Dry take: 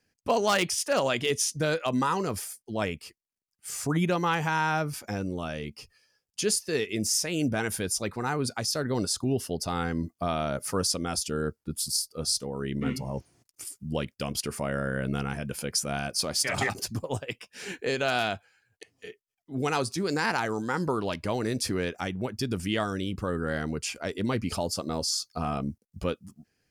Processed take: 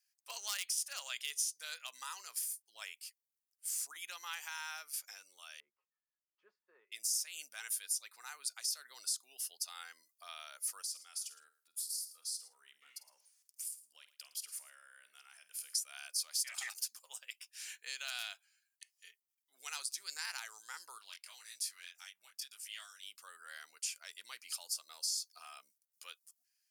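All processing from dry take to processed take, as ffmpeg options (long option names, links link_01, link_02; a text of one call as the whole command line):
ffmpeg -i in.wav -filter_complex "[0:a]asettb=1/sr,asplit=3[link_01][link_02][link_03];[link_01]atrim=end=5.604[link_04];[link_02]atrim=start=5.6:end=6.92,asetpts=PTS-STARTPTS,afade=type=in:duration=0.004:curve=qsin,afade=type=out:start_time=1.316:duration=0.004:curve=qsin,lowpass=frequency=1000:width=0.5412,lowpass=frequency=1000:width=1.3066,equalizer=frequency=740:width=7.9:gain=-13.5,aecho=1:1:5.5:0.42,atrim=end_sample=58212[link_05];[link_03]atrim=start=6.916[link_06];[link_04][link_05]acrossfade=duration=0.004:curve1=hsin:curve2=qsin[link_07];[link_07][link_06]acrossfade=duration=0.004:curve1=qsin:curve2=hsin,asettb=1/sr,asplit=3[link_08][link_09][link_10];[link_08]atrim=end=10.824[link_11];[link_09]atrim=start=10.82:end=15.75,asetpts=PTS-STARTPTS,afade=type=in:duration=0.004:curve=qsin,afade=type=out:start_time=4.926:duration=0.004:curve=qsin,acompressor=threshold=-39dB:ratio=2.5:attack=3.2:release=140:knee=1:detection=peak,asplit=2[link_12][link_13];[link_13]adelay=49,volume=-13.5dB[link_14];[link_12][link_14]amix=inputs=2:normalize=0,atrim=end_sample=217413,aecho=1:1:112:0.141,atrim=end_sample=217413[link_15];[link_10]atrim=start=15.746[link_16];[link_11][link_15]acrossfade=duration=0.004:curve1=hsin:curve2=qsin[link_17];[link_17][link_16]acrossfade=duration=0.004:curve1=qsin:curve2=hsin,asettb=1/sr,asplit=3[link_18][link_19][link_20];[link_18]atrim=end=20.984[link_21];[link_19]atrim=start=20.98:end=23.03,asetpts=PTS-STARTPTS,afade=type=in:duration=0.004:curve=qsin,afade=type=out:start_time=2.046:duration=0.004:curve=qsin,flanger=delay=19.5:depth=3.2:speed=1.8,equalizer=frequency=380:width=0.62:gain=-10[link_22];[link_20]atrim=start=23.026[link_23];[link_21][link_22]acrossfade=duration=0.004:curve1=hsin:curve2=qsin[link_24];[link_24][link_23]acrossfade=duration=0.004:curve1=qsin:curve2=hsin,highpass=1100,aderivative,acompressor=threshold=-34dB:ratio=2.5,volume=-1dB" out.wav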